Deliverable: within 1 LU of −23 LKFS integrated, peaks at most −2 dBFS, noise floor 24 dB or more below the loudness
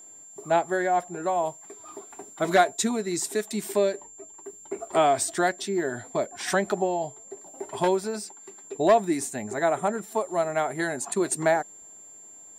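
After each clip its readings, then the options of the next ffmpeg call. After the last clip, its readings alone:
interfering tone 7,300 Hz; level of the tone −45 dBFS; integrated loudness −26.0 LKFS; sample peak −8.0 dBFS; target loudness −23.0 LKFS
→ -af "bandreject=frequency=7300:width=30"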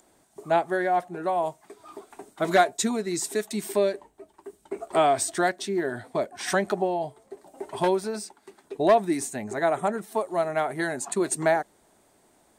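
interfering tone none found; integrated loudness −26.0 LKFS; sample peak −8.0 dBFS; target loudness −23.0 LKFS
→ -af "volume=3dB"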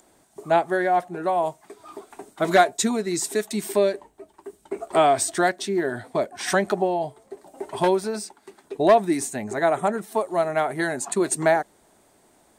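integrated loudness −23.0 LKFS; sample peak −5.0 dBFS; background noise floor −60 dBFS

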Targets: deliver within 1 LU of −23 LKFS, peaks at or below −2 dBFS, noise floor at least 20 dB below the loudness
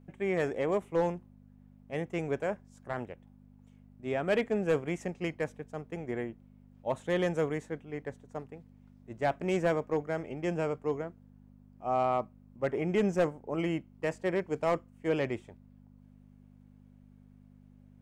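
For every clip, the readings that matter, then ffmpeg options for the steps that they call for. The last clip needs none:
mains hum 50 Hz; hum harmonics up to 250 Hz; level of the hum −57 dBFS; integrated loudness −33.0 LKFS; sample peak −20.0 dBFS; target loudness −23.0 LKFS
→ -af "bandreject=frequency=50:width_type=h:width=4,bandreject=frequency=100:width_type=h:width=4,bandreject=frequency=150:width_type=h:width=4,bandreject=frequency=200:width_type=h:width=4,bandreject=frequency=250:width_type=h:width=4"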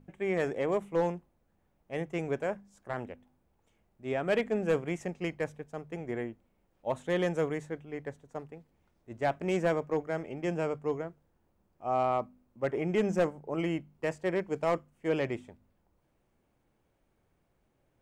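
mains hum none found; integrated loudness −33.0 LKFS; sample peak −19.0 dBFS; target loudness −23.0 LKFS
→ -af "volume=10dB"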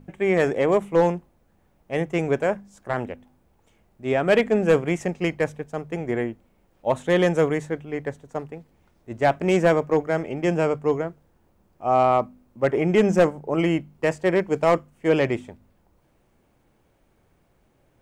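integrated loudness −23.0 LKFS; sample peak −9.0 dBFS; background noise floor −64 dBFS

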